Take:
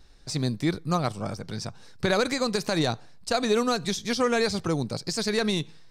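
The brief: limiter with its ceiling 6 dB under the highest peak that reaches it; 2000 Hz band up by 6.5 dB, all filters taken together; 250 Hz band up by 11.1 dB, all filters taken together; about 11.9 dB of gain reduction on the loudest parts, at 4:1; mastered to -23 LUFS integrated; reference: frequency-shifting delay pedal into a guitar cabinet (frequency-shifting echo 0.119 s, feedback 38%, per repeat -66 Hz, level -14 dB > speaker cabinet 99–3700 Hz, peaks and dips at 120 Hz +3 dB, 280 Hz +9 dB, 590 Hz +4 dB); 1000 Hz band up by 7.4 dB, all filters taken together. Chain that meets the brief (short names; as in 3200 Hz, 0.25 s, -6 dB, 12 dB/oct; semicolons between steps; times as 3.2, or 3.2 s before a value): bell 250 Hz +8 dB; bell 1000 Hz +7.5 dB; bell 2000 Hz +5.5 dB; compressor 4:1, threshold -29 dBFS; limiter -22 dBFS; frequency-shifting echo 0.119 s, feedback 38%, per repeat -66 Hz, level -14 dB; speaker cabinet 99–3700 Hz, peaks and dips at 120 Hz +3 dB, 280 Hz +9 dB, 590 Hz +4 dB; gain +8 dB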